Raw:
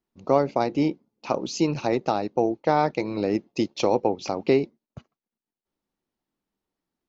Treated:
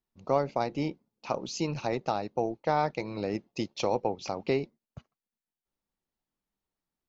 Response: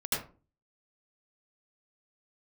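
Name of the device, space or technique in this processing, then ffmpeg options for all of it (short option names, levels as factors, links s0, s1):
low shelf boost with a cut just above: -af "lowshelf=f=65:g=6.5,equalizer=f=310:t=o:w=1.1:g=-5.5,volume=0.596"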